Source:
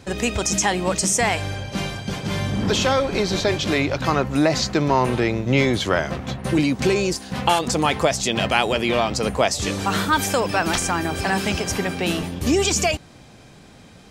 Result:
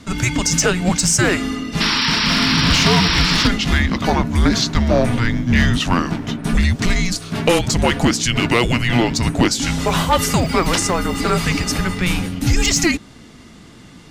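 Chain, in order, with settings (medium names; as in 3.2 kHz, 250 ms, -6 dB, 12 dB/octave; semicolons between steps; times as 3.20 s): painted sound noise, 1.80–3.48 s, 1.2–6.1 kHz -23 dBFS; frequency shift -360 Hz; one-sided clip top -14 dBFS; trim +4.5 dB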